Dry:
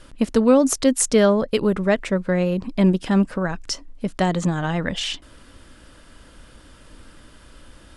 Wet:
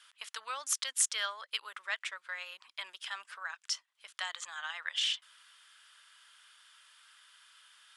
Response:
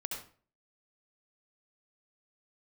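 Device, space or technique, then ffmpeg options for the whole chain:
headphones lying on a table: -af "highpass=frequency=1200:width=0.5412,highpass=frequency=1200:width=1.3066,equalizer=frequency=3300:width_type=o:width=0.32:gain=6,volume=-7.5dB"

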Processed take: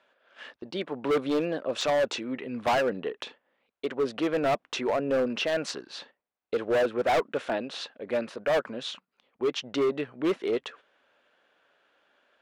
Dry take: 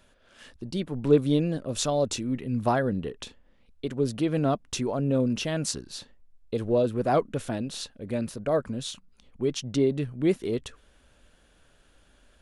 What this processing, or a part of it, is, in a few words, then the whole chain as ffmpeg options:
walkie-talkie: -af "highpass=520,lowpass=2700,asoftclip=type=hard:threshold=-29dB,agate=range=-8dB:threshold=-58dB:ratio=16:detection=peak,volume=8dB"

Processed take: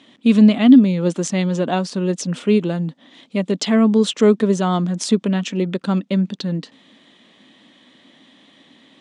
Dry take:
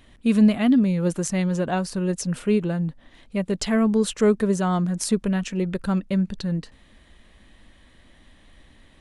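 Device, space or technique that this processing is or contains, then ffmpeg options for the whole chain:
television speaker: -filter_complex "[0:a]highpass=frequency=170:width=0.5412,highpass=frequency=170:width=1.3066,equalizer=frequency=270:width_type=q:width=4:gain=6,equalizer=frequency=1600:width_type=q:width=4:gain=-4,equalizer=frequency=3400:width_type=q:width=4:gain=7,lowpass=frequency=7600:width=0.5412,lowpass=frequency=7600:width=1.3066,asettb=1/sr,asplit=3[link_01][link_02][link_03];[link_01]atrim=end=2.554[link_04];[link_02]atrim=start=2.55:end=3.51,asetpts=PTS-STARTPTS,afade=type=in:duration=0.004:curve=qsin,afade=type=out:start_time=0.956:duration=0.004:curve=qsin,highshelf=frequency=6100:gain=5.5[link_05];[link_03]atrim=start=3.506[link_06];[link_04][link_05]acrossfade=duration=0.004:curve1=hsin:curve2=qsin[link_07];[link_07][link_06]acrossfade=duration=0.004:curve1=qsin:curve2=hsin,volume=4.5dB"

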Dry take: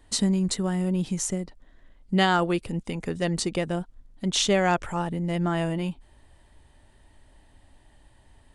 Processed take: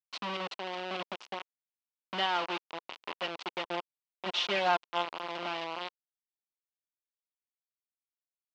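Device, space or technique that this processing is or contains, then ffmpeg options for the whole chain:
hand-held game console: -filter_complex "[0:a]lowpass=7500,acrusher=bits=3:mix=0:aa=0.000001,highpass=460,equalizer=frequency=470:width_type=q:width=4:gain=-4,equalizer=frequency=1000:width_type=q:width=4:gain=4,equalizer=frequency=1700:width_type=q:width=4:gain=-4,equalizer=frequency=2900:width_type=q:width=4:gain=5,lowpass=frequency=4200:width=0.5412,lowpass=frequency=4200:width=1.3066,asettb=1/sr,asplit=3[link_01][link_02][link_03];[link_01]atrim=end=3.644[link_04];[link_02]atrim=start=3.64:end=5.05,asetpts=PTS-STARTPTS,afade=type=in:duration=0.004:curve=qsin,afade=type=out:start_time=1.406:duration=0.004:curve=qsin,aecho=1:1:5.7:0.85,atrim=end_sample=62181[link_05];[link_03]atrim=start=5.046[link_06];[link_04][link_05]acrossfade=duration=0.004:curve1=hsin:curve2=qsin[link_07];[link_07][link_06]acrossfade=duration=0.004:curve1=qsin:curve2=hsin,volume=-8dB"

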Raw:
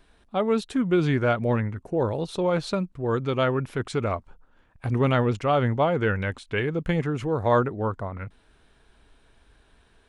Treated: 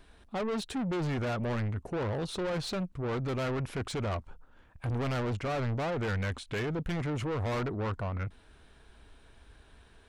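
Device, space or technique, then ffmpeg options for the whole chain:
saturation between pre-emphasis and de-emphasis: -filter_complex "[0:a]asettb=1/sr,asplit=3[link_01][link_02][link_03];[link_01]atrim=end=5.254[link_04];[link_02]atrim=start=5.25:end=6.21,asetpts=PTS-STARTPTS,afade=type=in:duration=0.004:curve=qsin,afade=type=out:start_time=0.956:duration=0.004:curve=qsin,acrossover=split=2500[link_05][link_06];[link_06]acompressor=threshold=-48dB:ratio=4:attack=1:release=60[link_07];[link_05][link_07]amix=inputs=2:normalize=0[link_08];[link_03]atrim=start=6.206[link_09];[link_04][link_08]acrossfade=duration=0.004:curve1=hsin:curve2=qsin[link_10];[link_10][link_09]acrossfade=duration=0.004:curve1=qsin:curve2=hsin,highshelf=frequency=7000:gain=8.5,asoftclip=type=tanh:threshold=-31dB,equalizer=frequency=73:width_type=o:width=0.77:gain=5,highshelf=frequency=7000:gain=-8.5,volume=1dB"

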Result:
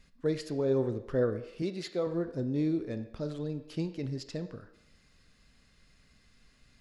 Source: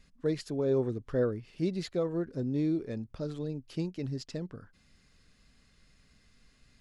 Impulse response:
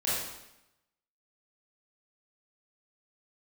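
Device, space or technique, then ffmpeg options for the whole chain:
filtered reverb send: -filter_complex "[0:a]asplit=2[link_01][link_02];[link_02]highpass=360,lowpass=5000[link_03];[1:a]atrim=start_sample=2205[link_04];[link_03][link_04]afir=irnorm=-1:irlink=0,volume=-17dB[link_05];[link_01][link_05]amix=inputs=2:normalize=0,asettb=1/sr,asplit=3[link_06][link_07][link_08];[link_06]atrim=end=1.624[link_09];[link_07]atrim=start=1.62:end=2.07,asetpts=PTS-STARTPTS,afade=type=in:duration=0.004:curve=qsin,afade=type=out:start_time=0.446:duration=0.004:curve=qsin,highpass=frequency=290:poles=1[link_10];[link_08]atrim=start=2.066[link_11];[link_09][link_10]acrossfade=duration=0.004:curve1=hsin:curve2=qsin[link_12];[link_12][link_11]acrossfade=duration=0.004:curve1=qsin:curve2=hsin"

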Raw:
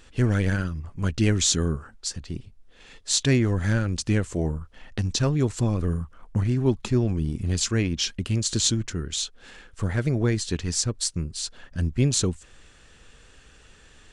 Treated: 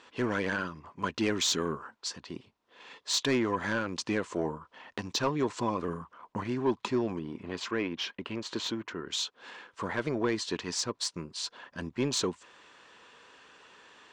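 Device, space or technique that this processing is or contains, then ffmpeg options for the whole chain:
intercom: -filter_complex "[0:a]highpass=310,lowpass=4700,equalizer=frequency=1000:width_type=o:width=0.32:gain=11.5,asoftclip=type=tanh:threshold=-18.5dB,asettb=1/sr,asplit=3[link_01][link_02][link_03];[link_01]atrim=end=7.194[link_04];[link_02]atrim=start=7.19:end=9.07,asetpts=PTS-STARTPTS,afade=type=in:duration=0.004:curve=qsin,afade=type=out:start_time=1.876:duration=0.004:curve=qsin,bass=frequency=250:gain=-4,treble=frequency=4000:gain=-14[link_05];[link_03]atrim=start=9.066[link_06];[link_04][link_05]acrossfade=duration=0.004:curve1=hsin:curve2=qsin[link_07];[link_07][link_06]acrossfade=duration=0.004:curve1=qsin:curve2=hsin"

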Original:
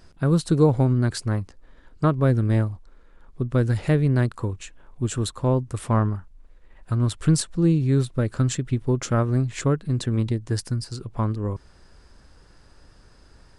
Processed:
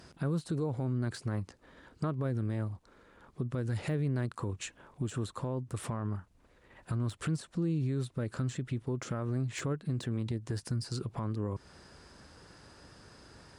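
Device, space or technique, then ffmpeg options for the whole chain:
podcast mastering chain: -af "highpass=97,deesser=0.8,acompressor=threshold=-33dB:ratio=2.5,alimiter=level_in=3dB:limit=-24dB:level=0:latency=1:release=40,volume=-3dB,volume=2.5dB" -ar 44100 -c:a libmp3lame -b:a 112k

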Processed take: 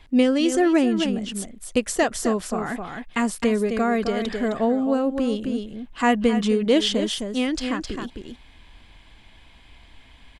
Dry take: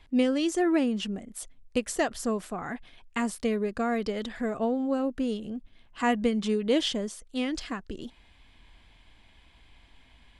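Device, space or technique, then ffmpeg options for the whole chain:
ducked delay: -filter_complex "[0:a]asplit=3[link_01][link_02][link_03];[link_02]adelay=262,volume=-5dB[link_04];[link_03]apad=whole_len=469798[link_05];[link_04][link_05]sidechaincompress=threshold=-30dB:ratio=8:attack=5.6:release=138[link_06];[link_01][link_06]amix=inputs=2:normalize=0,volume=6dB"

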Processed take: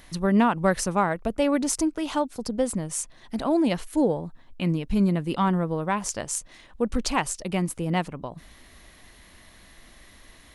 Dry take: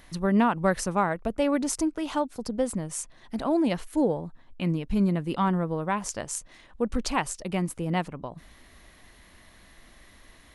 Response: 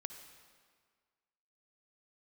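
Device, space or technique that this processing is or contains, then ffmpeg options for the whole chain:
exciter from parts: -filter_complex "[0:a]asplit=2[link_01][link_02];[link_02]highpass=2000,asoftclip=type=tanh:threshold=-27dB,volume=-10dB[link_03];[link_01][link_03]amix=inputs=2:normalize=0,volume=2dB"

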